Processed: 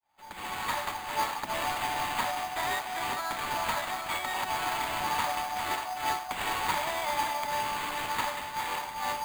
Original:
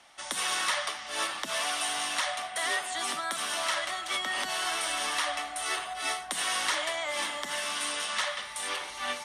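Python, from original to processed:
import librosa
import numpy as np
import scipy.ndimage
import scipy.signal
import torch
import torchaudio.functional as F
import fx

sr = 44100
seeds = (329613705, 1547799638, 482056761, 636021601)

p1 = fx.fade_in_head(x, sr, length_s=0.9)
p2 = scipy.signal.sosfilt(scipy.signal.butter(2, 10000.0, 'lowpass', fs=sr, output='sos'), p1)
p3 = fx.peak_eq(p2, sr, hz=880.0, db=15.0, octaves=0.32)
p4 = p3 + fx.echo_single(p3, sr, ms=403, db=-8.0, dry=0)
p5 = fx.sample_hold(p4, sr, seeds[0], rate_hz=5600.0, jitter_pct=0)
p6 = fx.high_shelf(p5, sr, hz=4000.0, db=-5.5)
p7 = fx.mod_noise(p6, sr, seeds[1], snr_db=17)
y = p7 * librosa.db_to_amplitude(-2.5)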